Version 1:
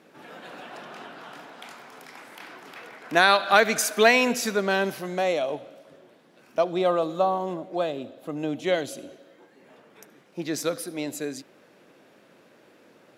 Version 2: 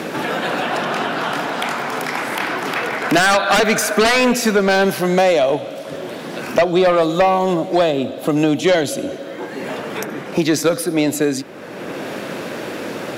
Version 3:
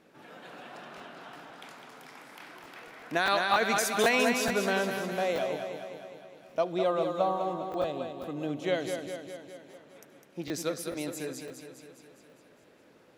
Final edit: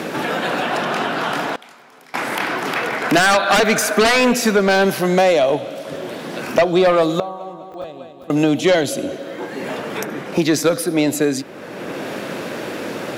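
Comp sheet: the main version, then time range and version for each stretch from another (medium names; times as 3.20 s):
2
1.56–2.14 s: from 1
7.20–8.30 s: from 3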